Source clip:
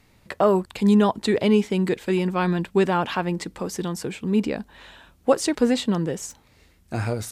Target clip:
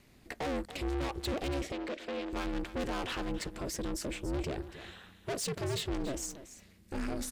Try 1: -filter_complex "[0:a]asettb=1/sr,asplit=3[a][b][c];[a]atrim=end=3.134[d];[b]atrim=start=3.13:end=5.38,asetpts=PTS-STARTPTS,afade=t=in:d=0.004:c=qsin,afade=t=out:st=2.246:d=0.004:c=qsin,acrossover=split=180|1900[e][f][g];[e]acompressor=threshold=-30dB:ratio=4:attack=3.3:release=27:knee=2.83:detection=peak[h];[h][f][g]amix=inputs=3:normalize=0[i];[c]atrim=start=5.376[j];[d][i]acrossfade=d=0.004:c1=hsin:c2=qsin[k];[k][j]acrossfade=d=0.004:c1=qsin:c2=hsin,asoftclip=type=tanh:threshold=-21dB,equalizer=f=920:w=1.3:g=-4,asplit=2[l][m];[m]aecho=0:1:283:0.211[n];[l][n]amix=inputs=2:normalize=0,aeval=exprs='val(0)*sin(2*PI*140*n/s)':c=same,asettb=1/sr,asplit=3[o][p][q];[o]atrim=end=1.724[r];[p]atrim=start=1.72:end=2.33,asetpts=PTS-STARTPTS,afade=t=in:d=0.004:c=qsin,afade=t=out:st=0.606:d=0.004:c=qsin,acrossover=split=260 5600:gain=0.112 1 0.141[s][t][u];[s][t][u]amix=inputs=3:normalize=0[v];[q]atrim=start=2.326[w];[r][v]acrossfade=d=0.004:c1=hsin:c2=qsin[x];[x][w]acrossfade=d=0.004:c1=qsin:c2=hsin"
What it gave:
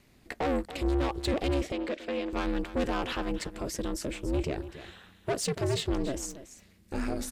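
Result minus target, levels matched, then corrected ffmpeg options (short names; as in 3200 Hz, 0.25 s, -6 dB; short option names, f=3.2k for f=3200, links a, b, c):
soft clip: distortion -4 dB
-filter_complex "[0:a]asettb=1/sr,asplit=3[a][b][c];[a]atrim=end=3.134[d];[b]atrim=start=3.13:end=5.38,asetpts=PTS-STARTPTS,afade=t=in:d=0.004:c=qsin,afade=t=out:st=2.246:d=0.004:c=qsin,acrossover=split=180|1900[e][f][g];[e]acompressor=threshold=-30dB:ratio=4:attack=3.3:release=27:knee=2.83:detection=peak[h];[h][f][g]amix=inputs=3:normalize=0[i];[c]atrim=start=5.376[j];[d][i]acrossfade=d=0.004:c1=hsin:c2=qsin[k];[k][j]acrossfade=d=0.004:c1=qsin:c2=hsin,asoftclip=type=tanh:threshold=-28.5dB,equalizer=f=920:w=1.3:g=-4,asplit=2[l][m];[m]aecho=0:1:283:0.211[n];[l][n]amix=inputs=2:normalize=0,aeval=exprs='val(0)*sin(2*PI*140*n/s)':c=same,asettb=1/sr,asplit=3[o][p][q];[o]atrim=end=1.724[r];[p]atrim=start=1.72:end=2.33,asetpts=PTS-STARTPTS,afade=t=in:d=0.004:c=qsin,afade=t=out:st=0.606:d=0.004:c=qsin,acrossover=split=260 5600:gain=0.112 1 0.141[s][t][u];[s][t][u]amix=inputs=3:normalize=0[v];[q]atrim=start=2.326[w];[r][v]acrossfade=d=0.004:c1=hsin:c2=qsin[x];[x][w]acrossfade=d=0.004:c1=qsin:c2=hsin"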